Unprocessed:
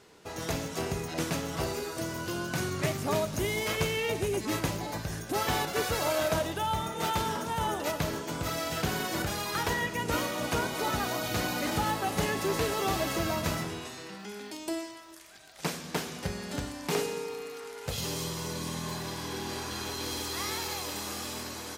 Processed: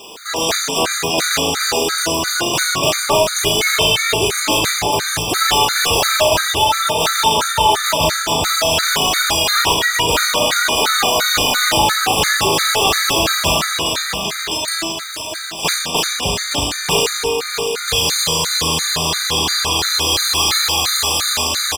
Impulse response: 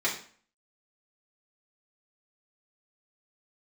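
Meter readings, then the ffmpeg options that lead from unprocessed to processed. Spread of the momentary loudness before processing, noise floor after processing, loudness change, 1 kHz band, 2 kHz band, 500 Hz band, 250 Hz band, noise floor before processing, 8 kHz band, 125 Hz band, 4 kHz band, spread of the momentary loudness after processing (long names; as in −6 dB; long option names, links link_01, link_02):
8 LU, −25 dBFS, +16.5 dB, +15.5 dB, +17.0 dB, +12.5 dB, +8.0 dB, −44 dBFS, +20.0 dB, +7.5 dB, +22.0 dB, 5 LU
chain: -filter_complex "[0:a]highshelf=frequency=8800:gain=-12,aexciter=amount=1.3:drive=9.2:freq=2900,asubboost=boost=5.5:cutoff=86,asplit=2[link_01][link_02];[link_02]highpass=frequency=720:poles=1,volume=29dB,asoftclip=type=tanh:threshold=-4.5dB[link_03];[link_01][link_03]amix=inputs=2:normalize=0,lowpass=frequency=6800:poles=1,volume=-6dB,acrusher=bits=5:mix=0:aa=0.5,asplit=2[link_04][link_05];[link_05]adelay=37,volume=-3.5dB[link_06];[link_04][link_06]amix=inputs=2:normalize=0,asplit=2[link_07][link_08];[link_08]aecho=0:1:636|1272|1908|2544|3180|3816:0.335|0.184|0.101|0.0557|0.0307|0.0169[link_09];[link_07][link_09]amix=inputs=2:normalize=0,afftfilt=real='re*gt(sin(2*PI*2.9*pts/sr)*(1-2*mod(floor(b*sr/1024/1200),2)),0)':imag='im*gt(sin(2*PI*2.9*pts/sr)*(1-2*mod(floor(b*sr/1024/1200),2)),0)':win_size=1024:overlap=0.75"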